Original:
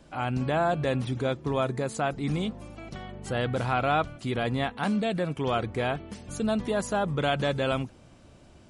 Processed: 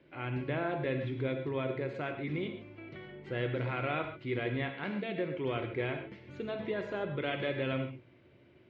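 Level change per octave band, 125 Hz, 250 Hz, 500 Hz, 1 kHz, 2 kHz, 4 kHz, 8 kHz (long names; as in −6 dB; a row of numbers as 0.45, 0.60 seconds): −7.0 dB, −7.5 dB, −6.0 dB, −11.5 dB, −5.0 dB, −9.0 dB, below −30 dB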